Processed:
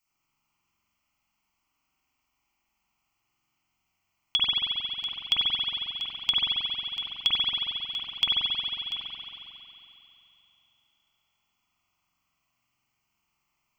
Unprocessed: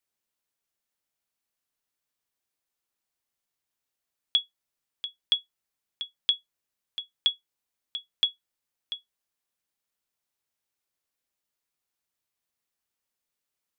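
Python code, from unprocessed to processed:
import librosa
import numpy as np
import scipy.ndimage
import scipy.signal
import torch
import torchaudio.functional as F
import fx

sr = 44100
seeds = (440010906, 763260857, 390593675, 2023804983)

y = fx.fixed_phaser(x, sr, hz=2500.0, stages=8)
y = fx.rev_spring(y, sr, rt60_s=3.2, pass_ms=(45,), chirp_ms=70, drr_db=-8.5)
y = F.gain(torch.from_numpy(y), 7.0).numpy()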